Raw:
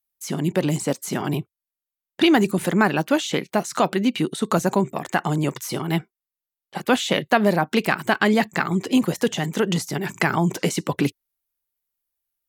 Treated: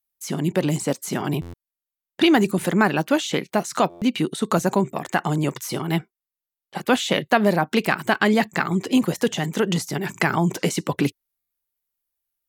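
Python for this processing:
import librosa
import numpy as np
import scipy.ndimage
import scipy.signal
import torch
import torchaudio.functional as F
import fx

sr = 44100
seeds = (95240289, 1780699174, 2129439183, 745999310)

y = fx.buffer_glitch(x, sr, at_s=(1.41, 3.89, 11.38), block=512, repeats=10)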